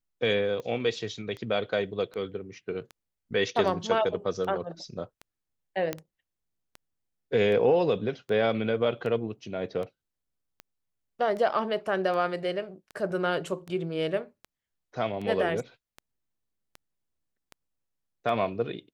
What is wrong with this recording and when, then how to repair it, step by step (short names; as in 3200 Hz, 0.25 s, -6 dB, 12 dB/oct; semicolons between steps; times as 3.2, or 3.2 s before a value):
tick 78 rpm -26 dBFS
5.93 pop -15 dBFS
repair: de-click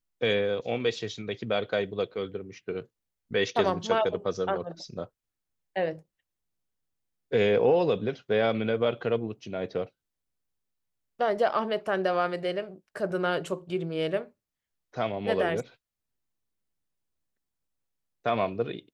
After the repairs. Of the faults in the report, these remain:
5.93 pop